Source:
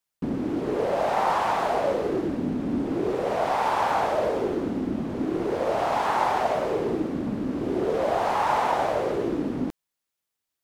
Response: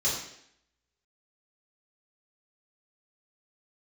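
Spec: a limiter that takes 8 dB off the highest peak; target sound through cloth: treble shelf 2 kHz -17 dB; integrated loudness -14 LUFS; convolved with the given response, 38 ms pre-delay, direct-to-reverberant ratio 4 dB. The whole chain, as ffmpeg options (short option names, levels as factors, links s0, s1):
-filter_complex "[0:a]alimiter=limit=0.119:level=0:latency=1,asplit=2[s0][s1];[1:a]atrim=start_sample=2205,adelay=38[s2];[s1][s2]afir=irnorm=-1:irlink=0,volume=0.224[s3];[s0][s3]amix=inputs=2:normalize=0,highshelf=f=2000:g=-17,volume=4.73"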